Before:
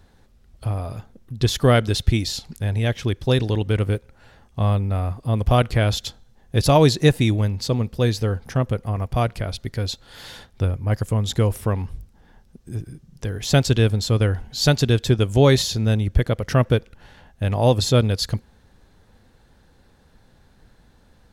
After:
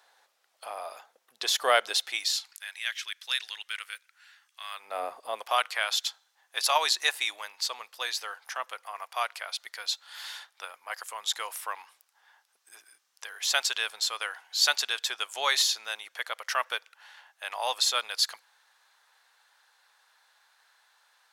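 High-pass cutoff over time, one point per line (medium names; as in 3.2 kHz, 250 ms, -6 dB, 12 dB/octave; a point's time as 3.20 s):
high-pass 24 dB/octave
1.95 s 670 Hz
2.71 s 1.5 kHz
4.69 s 1.5 kHz
5.03 s 440 Hz
5.60 s 930 Hz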